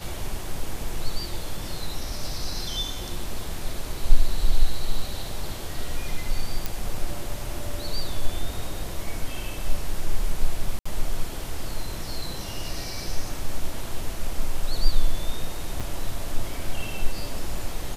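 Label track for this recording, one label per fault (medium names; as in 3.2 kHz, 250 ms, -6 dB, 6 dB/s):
6.660000	6.660000	pop
10.790000	10.860000	dropout 65 ms
15.800000	15.810000	dropout 6.1 ms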